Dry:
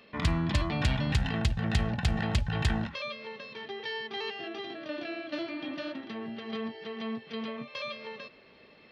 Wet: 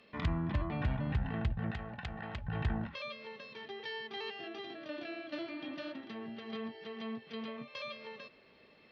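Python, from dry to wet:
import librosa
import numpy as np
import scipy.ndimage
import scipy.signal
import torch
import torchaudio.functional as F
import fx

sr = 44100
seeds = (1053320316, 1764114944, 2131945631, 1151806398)

y = fx.env_lowpass_down(x, sr, base_hz=1500.0, full_db=-24.5)
y = fx.low_shelf(y, sr, hz=470.0, db=-11.0, at=(1.71, 2.44))
y = y * librosa.db_to_amplitude(-5.5)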